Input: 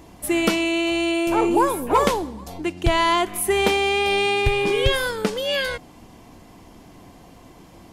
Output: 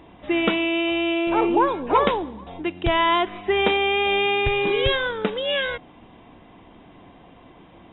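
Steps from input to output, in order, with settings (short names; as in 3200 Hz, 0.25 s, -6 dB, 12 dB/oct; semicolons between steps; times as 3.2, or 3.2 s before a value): brick-wall FIR low-pass 3900 Hz; low shelf 160 Hz -6 dB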